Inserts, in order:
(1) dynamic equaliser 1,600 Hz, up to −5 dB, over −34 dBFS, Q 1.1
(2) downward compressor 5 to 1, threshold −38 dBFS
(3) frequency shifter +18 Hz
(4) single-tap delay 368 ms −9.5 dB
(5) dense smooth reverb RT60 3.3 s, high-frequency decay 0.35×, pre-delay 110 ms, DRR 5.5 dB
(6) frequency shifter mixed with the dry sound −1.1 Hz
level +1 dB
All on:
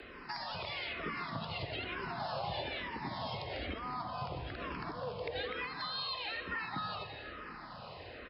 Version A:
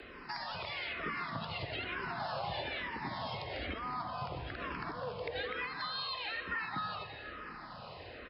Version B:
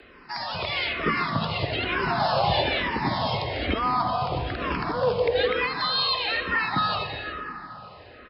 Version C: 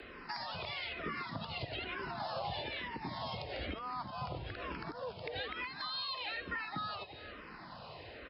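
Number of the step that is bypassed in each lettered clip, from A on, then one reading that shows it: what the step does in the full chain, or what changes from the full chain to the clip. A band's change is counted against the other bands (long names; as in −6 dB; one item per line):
1, 2 kHz band +2.5 dB
2, average gain reduction 11.0 dB
5, change in momentary loudness spread +2 LU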